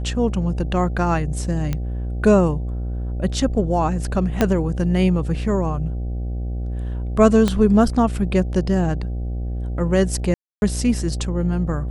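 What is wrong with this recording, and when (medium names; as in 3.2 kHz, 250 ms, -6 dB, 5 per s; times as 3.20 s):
buzz 60 Hz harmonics 13 -25 dBFS
1.73 s: pop -11 dBFS
4.41 s: pop -4 dBFS
7.48 s: pop -7 dBFS
10.34–10.62 s: dropout 281 ms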